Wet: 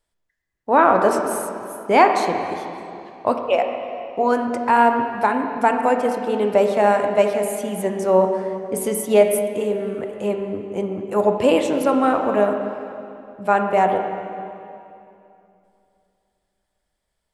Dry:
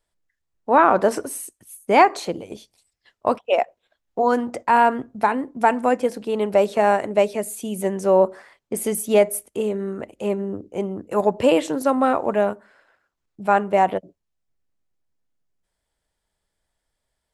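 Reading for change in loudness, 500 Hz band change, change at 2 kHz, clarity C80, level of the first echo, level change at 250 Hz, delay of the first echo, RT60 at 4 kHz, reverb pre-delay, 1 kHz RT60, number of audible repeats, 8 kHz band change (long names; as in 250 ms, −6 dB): +1.0 dB, +2.0 dB, +1.5 dB, 6.0 dB, no echo audible, +1.5 dB, no echo audible, 2.3 s, 12 ms, 2.6 s, no echo audible, 0.0 dB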